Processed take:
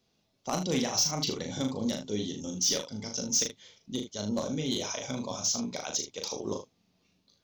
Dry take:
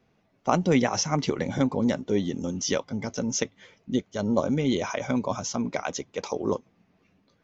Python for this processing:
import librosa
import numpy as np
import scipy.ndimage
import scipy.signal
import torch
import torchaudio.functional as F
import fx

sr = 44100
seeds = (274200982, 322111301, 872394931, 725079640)

y = fx.high_shelf_res(x, sr, hz=2800.0, db=11.5, q=1.5)
y = np.clip(10.0 ** (12.5 / 20.0) * y, -1.0, 1.0) / 10.0 ** (12.5 / 20.0)
y = fx.room_early_taps(y, sr, ms=(38, 77), db=(-4.5, -10.5))
y = F.gain(torch.from_numpy(y), -9.0).numpy()